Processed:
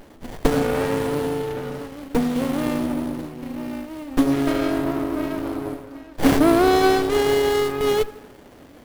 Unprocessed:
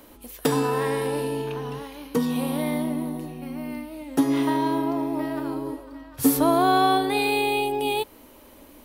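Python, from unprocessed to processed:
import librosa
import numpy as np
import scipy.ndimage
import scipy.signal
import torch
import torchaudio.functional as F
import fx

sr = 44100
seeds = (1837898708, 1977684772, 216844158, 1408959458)

y = fx.highpass(x, sr, hz=180.0, slope=6)
y = fx.high_shelf(y, sr, hz=9400.0, db=11.0)
y = fx.echo_bbd(y, sr, ms=81, stages=1024, feedback_pct=56, wet_db=-15)
y = fx.running_max(y, sr, window=33)
y = y * librosa.db_to_amplitude(4.5)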